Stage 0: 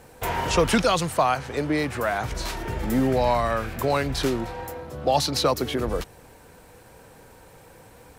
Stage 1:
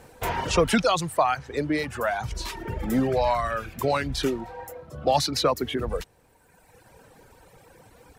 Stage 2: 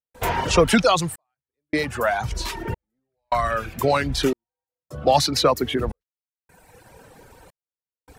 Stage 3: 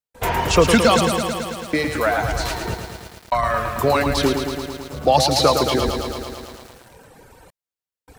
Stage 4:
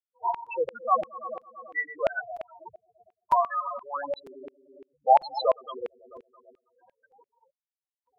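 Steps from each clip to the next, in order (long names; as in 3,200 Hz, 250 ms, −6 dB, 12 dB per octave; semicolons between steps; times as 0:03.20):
reverb reduction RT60 1.6 s; high-shelf EQ 11,000 Hz −4 dB
gate pattern ".xxxxxxx..." 104 BPM −60 dB; level +4.5 dB
feedback echo at a low word length 110 ms, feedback 80%, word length 7 bits, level −6.5 dB; level +1.5 dB
spectral peaks only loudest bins 4; auto-filter high-pass saw down 2.9 Hz 600–2,500 Hz; regular buffer underruns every 0.95 s, samples 256, repeat, from 0:00.46; level −4.5 dB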